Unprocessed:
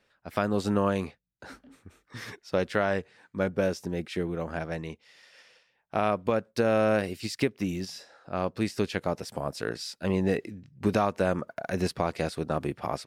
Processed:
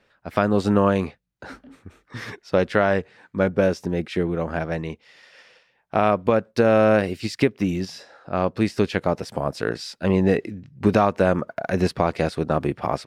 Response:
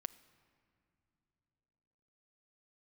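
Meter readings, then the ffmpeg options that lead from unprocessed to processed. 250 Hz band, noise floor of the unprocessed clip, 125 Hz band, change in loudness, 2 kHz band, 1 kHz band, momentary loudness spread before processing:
+7.5 dB, -74 dBFS, +7.5 dB, +7.0 dB, +6.5 dB, +7.0 dB, 14 LU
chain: -af "aemphasis=mode=reproduction:type=cd,volume=2.24"

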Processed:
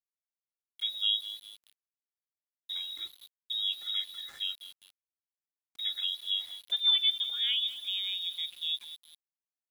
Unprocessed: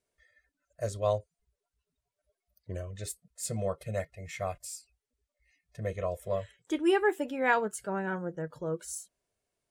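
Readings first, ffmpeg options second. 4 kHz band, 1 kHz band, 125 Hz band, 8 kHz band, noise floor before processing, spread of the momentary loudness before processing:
+22.0 dB, under -25 dB, under -40 dB, under -15 dB, under -85 dBFS, 14 LU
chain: -filter_complex "[0:a]acrossover=split=960[s0][s1];[s0]asplit=5[s2][s3][s4][s5][s6];[s3]adelay=198,afreqshift=-41,volume=0.237[s7];[s4]adelay=396,afreqshift=-82,volume=0.0923[s8];[s5]adelay=594,afreqshift=-123,volume=0.0359[s9];[s6]adelay=792,afreqshift=-164,volume=0.0141[s10];[s2][s7][s8][s9][s10]amix=inputs=5:normalize=0[s11];[s1]acompressor=threshold=0.00316:ratio=6[s12];[s11][s12]amix=inputs=2:normalize=0,lowpass=f=3300:t=q:w=0.5098,lowpass=f=3300:t=q:w=0.6013,lowpass=f=3300:t=q:w=0.9,lowpass=f=3300:t=q:w=2.563,afreqshift=-3900,aeval=exprs='val(0)*gte(abs(val(0)),0.00398)':c=same"

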